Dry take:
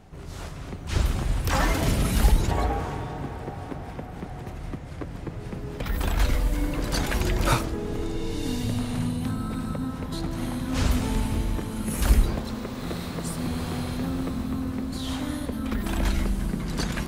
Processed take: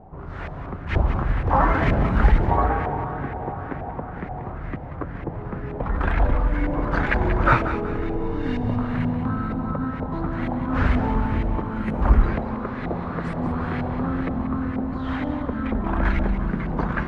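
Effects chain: LFO low-pass saw up 2.1 Hz 720–2100 Hz; thinning echo 185 ms, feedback 43%, high-pass 1.2 kHz, level -9 dB; trim +3 dB

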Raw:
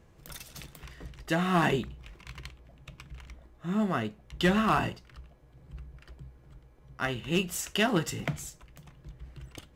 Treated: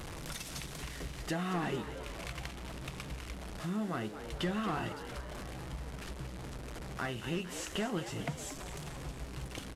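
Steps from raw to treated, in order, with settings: one-bit delta coder 64 kbps, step -43 dBFS; compression 2.5:1, threshold -45 dBFS, peak gain reduction 16 dB; on a send: frequency-shifting echo 228 ms, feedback 61%, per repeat +130 Hz, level -11.5 dB; on the sum: trim +5.5 dB

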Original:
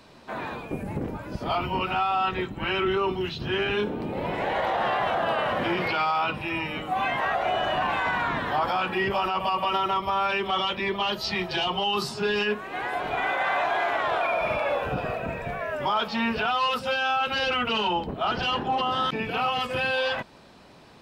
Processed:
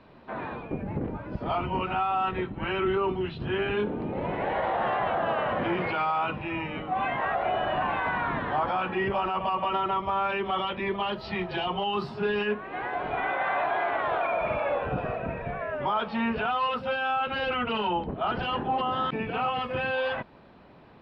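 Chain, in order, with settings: distance through air 400 m

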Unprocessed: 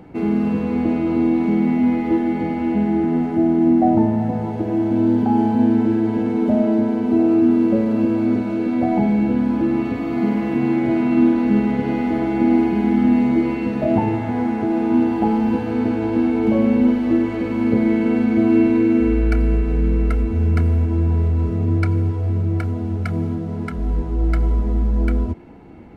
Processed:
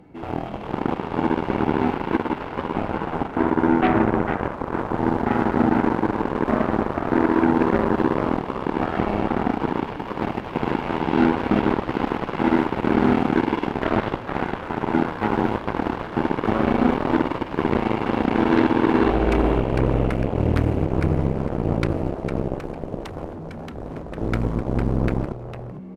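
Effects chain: frequency-shifting echo 453 ms, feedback 35%, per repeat +66 Hz, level -4.5 dB; Chebyshev shaper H 7 -12 dB, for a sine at -3.5 dBFS; trim -4.5 dB

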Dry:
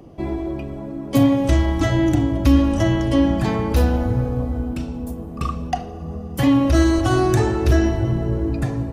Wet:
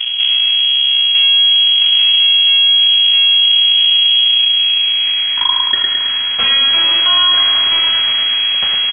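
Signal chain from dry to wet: band-pass sweep 210 Hz -> 1.1 kHz, 4.02–5.61 s; feedback comb 140 Hz, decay 0.21 s, harmonics all, mix 60%; full-wave rectifier; feedback delay 108 ms, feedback 43%, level -6 dB; frequency inversion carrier 3.3 kHz; loudness maximiser +17.5 dB; level flattener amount 70%; trim -4.5 dB

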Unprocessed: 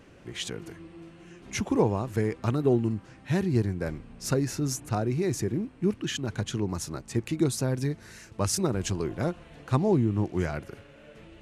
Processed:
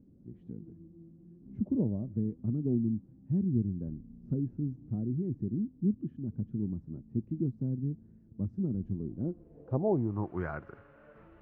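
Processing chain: 1.62–2.16 s: peaking EQ 600 Hz +14 dB 0.25 oct; low-pass sweep 230 Hz -> 1.3 kHz, 9.11–10.37 s; trim -7.5 dB

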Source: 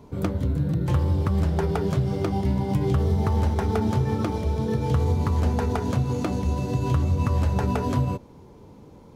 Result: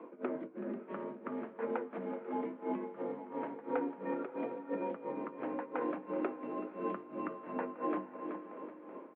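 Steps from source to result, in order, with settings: feedback delay 378 ms, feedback 45%, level -15 dB; tremolo 2.9 Hz, depth 96%; compression 4:1, threshold -33 dBFS, peak gain reduction 13 dB; mistuned SSB +61 Hz 210–2400 Hz; band-stop 760 Hz, Q 14; echo that smears into a reverb 530 ms, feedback 45%, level -14 dB; trim +2.5 dB

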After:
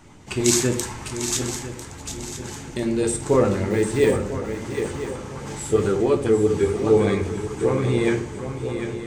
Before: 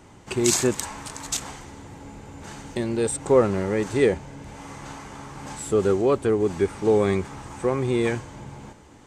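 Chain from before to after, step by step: 3.70–4.29 s: short-mantissa float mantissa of 4-bit; shuffle delay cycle 998 ms, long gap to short 3:1, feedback 37%, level -8.5 dB; LFO notch saw up 9.9 Hz 360–1700 Hz; simulated room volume 62 m³, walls mixed, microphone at 0.42 m; trim +1 dB

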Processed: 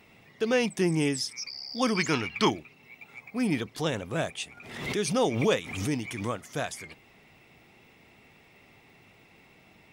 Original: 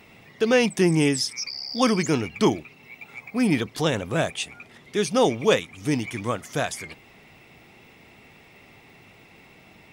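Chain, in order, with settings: 1.95–2.51 s: high-order bell 2.2 kHz +8.5 dB 2.8 oct; 4.57–6.34 s: swell ahead of each attack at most 61 dB/s; trim -6 dB

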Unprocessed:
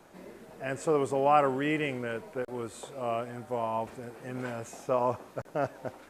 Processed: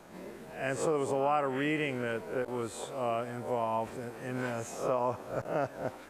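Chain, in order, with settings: reverse spectral sustain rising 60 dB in 0.42 s; compression 3:1, threshold -28 dBFS, peak gain reduction 8.5 dB; trim +1 dB

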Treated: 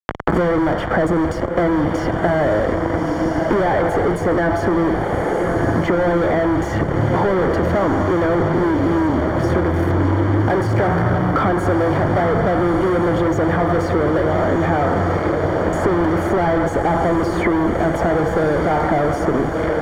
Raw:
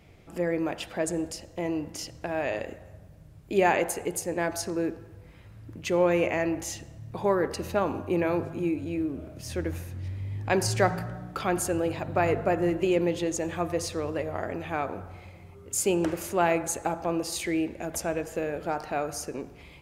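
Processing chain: fuzz box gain 47 dB, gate -45 dBFS; Savitzky-Golay filter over 41 samples; on a send: echo that smears into a reverb 1304 ms, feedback 41%, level -7.5 dB; on the sum: three bands compressed up and down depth 100%; trim -2.5 dB

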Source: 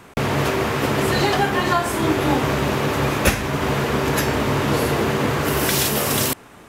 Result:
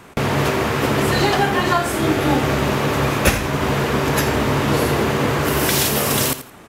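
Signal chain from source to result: 1.77–2.56 s: band-stop 1 kHz, Q 9; on a send: feedback delay 84 ms, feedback 24%, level -13 dB; on the sum: trim +1.5 dB

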